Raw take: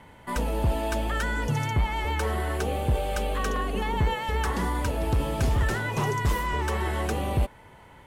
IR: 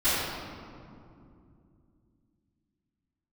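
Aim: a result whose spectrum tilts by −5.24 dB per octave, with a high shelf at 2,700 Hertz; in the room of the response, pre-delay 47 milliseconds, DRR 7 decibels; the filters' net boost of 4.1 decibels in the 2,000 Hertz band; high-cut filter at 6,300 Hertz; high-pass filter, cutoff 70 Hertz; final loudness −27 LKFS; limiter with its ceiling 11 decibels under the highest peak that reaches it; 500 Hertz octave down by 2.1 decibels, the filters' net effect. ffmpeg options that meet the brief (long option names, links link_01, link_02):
-filter_complex "[0:a]highpass=70,lowpass=6300,equalizer=frequency=500:width_type=o:gain=-3,equalizer=frequency=2000:width_type=o:gain=3.5,highshelf=frequency=2700:gain=4.5,alimiter=level_in=0.5dB:limit=-24dB:level=0:latency=1,volume=-0.5dB,asplit=2[link_01][link_02];[1:a]atrim=start_sample=2205,adelay=47[link_03];[link_02][link_03]afir=irnorm=-1:irlink=0,volume=-22dB[link_04];[link_01][link_04]amix=inputs=2:normalize=0,volume=4.5dB"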